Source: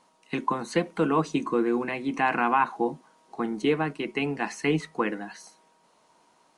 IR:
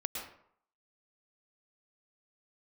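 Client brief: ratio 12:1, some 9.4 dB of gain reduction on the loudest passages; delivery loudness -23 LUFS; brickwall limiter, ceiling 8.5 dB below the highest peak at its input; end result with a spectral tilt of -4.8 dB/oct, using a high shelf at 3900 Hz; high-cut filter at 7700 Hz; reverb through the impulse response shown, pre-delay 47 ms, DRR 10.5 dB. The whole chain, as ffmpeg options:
-filter_complex "[0:a]lowpass=7.7k,highshelf=f=3.9k:g=-6.5,acompressor=threshold=-28dB:ratio=12,alimiter=level_in=2dB:limit=-24dB:level=0:latency=1,volume=-2dB,asplit=2[a][b];[1:a]atrim=start_sample=2205,adelay=47[c];[b][c]afir=irnorm=-1:irlink=0,volume=-12.5dB[d];[a][d]amix=inputs=2:normalize=0,volume=14dB"

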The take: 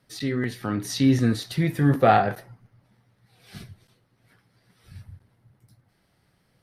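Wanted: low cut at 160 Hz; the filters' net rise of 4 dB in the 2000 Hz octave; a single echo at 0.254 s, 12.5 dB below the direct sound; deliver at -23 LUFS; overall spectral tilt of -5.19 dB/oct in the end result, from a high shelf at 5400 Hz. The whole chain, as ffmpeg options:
-af "highpass=160,equalizer=f=2k:t=o:g=4.5,highshelf=f=5.4k:g=4.5,aecho=1:1:254:0.237"

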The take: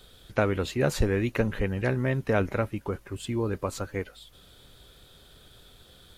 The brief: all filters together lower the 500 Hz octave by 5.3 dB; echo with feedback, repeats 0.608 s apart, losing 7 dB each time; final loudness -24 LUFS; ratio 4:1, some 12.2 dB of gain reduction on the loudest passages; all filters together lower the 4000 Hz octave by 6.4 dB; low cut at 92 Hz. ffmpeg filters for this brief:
-af "highpass=92,equalizer=f=500:t=o:g=-6.5,equalizer=f=4k:t=o:g=-8,acompressor=threshold=-38dB:ratio=4,aecho=1:1:608|1216|1824|2432|3040:0.447|0.201|0.0905|0.0407|0.0183,volume=17.5dB"

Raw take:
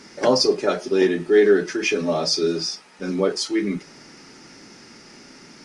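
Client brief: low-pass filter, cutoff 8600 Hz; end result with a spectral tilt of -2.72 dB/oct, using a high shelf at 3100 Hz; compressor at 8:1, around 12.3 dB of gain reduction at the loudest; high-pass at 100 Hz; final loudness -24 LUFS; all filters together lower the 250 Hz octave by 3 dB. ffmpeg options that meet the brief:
-af "highpass=100,lowpass=8.6k,equalizer=f=250:t=o:g=-4.5,highshelf=f=3.1k:g=8.5,acompressor=threshold=-24dB:ratio=8,volume=4dB"

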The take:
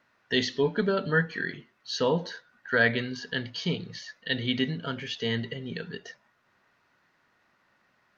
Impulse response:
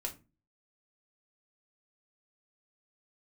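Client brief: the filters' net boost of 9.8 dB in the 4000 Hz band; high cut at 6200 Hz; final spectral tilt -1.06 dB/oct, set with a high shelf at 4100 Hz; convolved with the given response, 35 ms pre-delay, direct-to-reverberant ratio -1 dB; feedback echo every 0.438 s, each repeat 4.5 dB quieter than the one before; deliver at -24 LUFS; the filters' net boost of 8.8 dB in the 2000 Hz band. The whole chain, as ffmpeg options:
-filter_complex "[0:a]lowpass=6.2k,equalizer=f=2k:t=o:g=8.5,equalizer=f=4k:t=o:g=6.5,highshelf=f=4.1k:g=6.5,aecho=1:1:438|876|1314|1752|2190|2628|3066|3504|3942:0.596|0.357|0.214|0.129|0.0772|0.0463|0.0278|0.0167|0.01,asplit=2[a][b];[1:a]atrim=start_sample=2205,adelay=35[c];[b][c]afir=irnorm=-1:irlink=0,volume=1dB[d];[a][d]amix=inputs=2:normalize=0,volume=-6.5dB"

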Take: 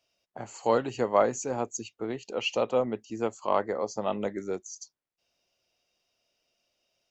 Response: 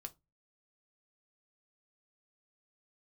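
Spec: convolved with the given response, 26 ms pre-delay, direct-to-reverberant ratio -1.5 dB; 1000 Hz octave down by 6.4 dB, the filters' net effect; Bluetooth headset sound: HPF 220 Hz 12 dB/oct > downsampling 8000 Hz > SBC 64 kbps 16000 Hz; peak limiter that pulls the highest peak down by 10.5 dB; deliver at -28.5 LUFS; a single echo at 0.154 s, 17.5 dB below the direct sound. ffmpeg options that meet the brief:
-filter_complex "[0:a]equalizer=f=1k:t=o:g=-8.5,alimiter=level_in=0.5dB:limit=-24dB:level=0:latency=1,volume=-0.5dB,aecho=1:1:154:0.133,asplit=2[a][b];[1:a]atrim=start_sample=2205,adelay=26[c];[b][c]afir=irnorm=-1:irlink=0,volume=6.5dB[d];[a][d]amix=inputs=2:normalize=0,highpass=220,aresample=8000,aresample=44100,volume=4.5dB" -ar 16000 -c:a sbc -b:a 64k

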